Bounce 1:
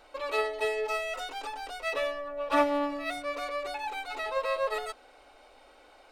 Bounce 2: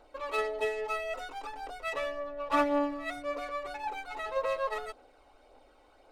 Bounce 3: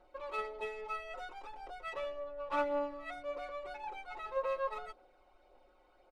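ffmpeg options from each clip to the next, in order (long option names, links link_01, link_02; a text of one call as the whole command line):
ffmpeg -i in.wav -filter_complex "[0:a]asplit=2[link_01][link_02];[link_02]adynamicsmooth=sensitivity=7:basefreq=1100,volume=1.5dB[link_03];[link_01][link_03]amix=inputs=2:normalize=0,aphaser=in_gain=1:out_gain=1:delay=1.1:decay=0.34:speed=1.8:type=triangular,volume=-8.5dB" out.wav
ffmpeg -i in.wav -af "highshelf=frequency=5100:gain=-11.5,aecho=1:1:5.5:0.63,volume=-7dB" out.wav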